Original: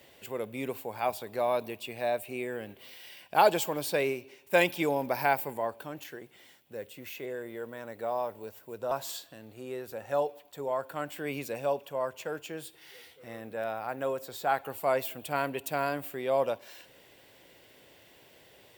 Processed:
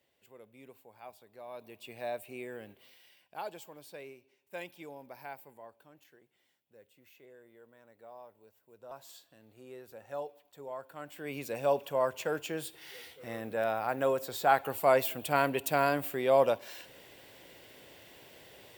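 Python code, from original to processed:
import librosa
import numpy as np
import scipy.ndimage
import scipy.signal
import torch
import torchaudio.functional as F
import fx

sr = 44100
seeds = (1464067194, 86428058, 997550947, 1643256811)

y = fx.gain(x, sr, db=fx.line((1.44, -19.0), (1.91, -7.0), (2.68, -7.0), (3.42, -18.5), (8.58, -18.5), (9.56, -10.0), (10.96, -10.0), (11.79, 3.0)))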